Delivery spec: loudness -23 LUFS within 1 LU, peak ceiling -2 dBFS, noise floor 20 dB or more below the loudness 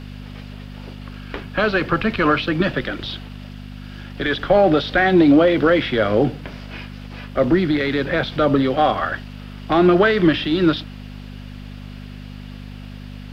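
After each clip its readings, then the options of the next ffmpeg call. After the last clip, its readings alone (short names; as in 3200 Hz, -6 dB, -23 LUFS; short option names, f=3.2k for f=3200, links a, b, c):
hum 50 Hz; harmonics up to 250 Hz; hum level -32 dBFS; loudness -18.0 LUFS; peak -3.5 dBFS; loudness target -23.0 LUFS
-> -af "bandreject=f=50:t=h:w=4,bandreject=f=100:t=h:w=4,bandreject=f=150:t=h:w=4,bandreject=f=200:t=h:w=4,bandreject=f=250:t=h:w=4"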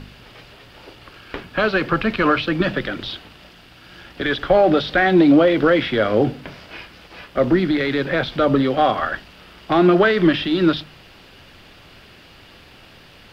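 hum none; loudness -18.0 LUFS; peak -4.0 dBFS; loudness target -23.0 LUFS
-> -af "volume=-5dB"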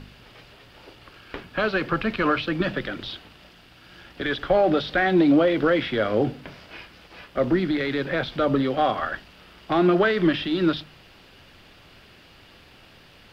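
loudness -23.0 LUFS; peak -9.0 dBFS; noise floor -51 dBFS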